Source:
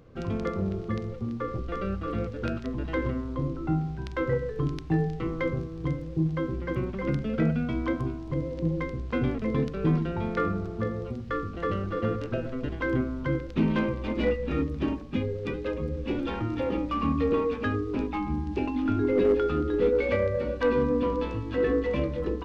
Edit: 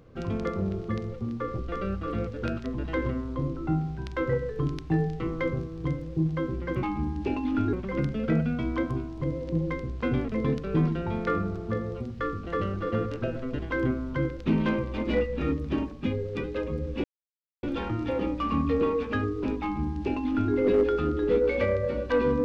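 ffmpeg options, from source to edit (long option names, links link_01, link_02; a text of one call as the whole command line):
ffmpeg -i in.wav -filter_complex "[0:a]asplit=4[link_01][link_02][link_03][link_04];[link_01]atrim=end=6.832[link_05];[link_02]atrim=start=18.138:end=19.042[link_06];[link_03]atrim=start=6.828:end=16.14,asetpts=PTS-STARTPTS,afade=type=out:start_time=9.308:duration=0.004:curve=hsin,apad=pad_dur=0.59[link_07];[link_04]atrim=start=16.14,asetpts=PTS-STARTPTS,afade=type=in:duration=0.004:curve=hsin[link_08];[link_05][link_06]acrossfade=duration=0.004:curve1=hsin:curve2=hsin[link_09];[link_07][link_08]concat=n=2:v=0:a=1[link_10];[link_09][link_10]acrossfade=duration=0.004:curve1=hsin:curve2=hsin" out.wav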